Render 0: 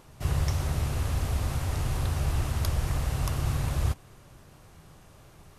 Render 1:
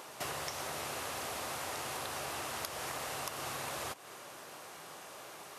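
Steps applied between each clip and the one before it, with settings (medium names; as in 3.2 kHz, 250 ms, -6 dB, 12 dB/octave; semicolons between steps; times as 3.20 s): high-pass 480 Hz 12 dB/octave; compression 10:1, threshold -46 dBFS, peak gain reduction 15.5 dB; trim +9.5 dB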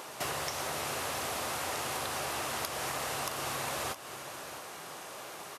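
in parallel at -3 dB: saturation -32 dBFS, distortion -19 dB; on the sum: delay 667 ms -12.5 dB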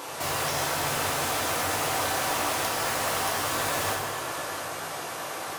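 in parallel at -4.5 dB: integer overflow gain 31.5 dB; on the sum: reverberation RT60 2.5 s, pre-delay 5 ms, DRR -5 dB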